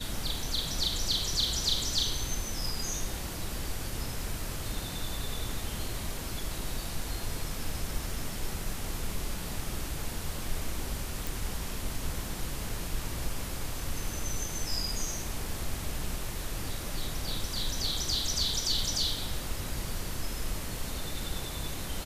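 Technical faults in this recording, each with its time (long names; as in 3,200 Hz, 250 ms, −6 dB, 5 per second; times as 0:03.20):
0:11.27: click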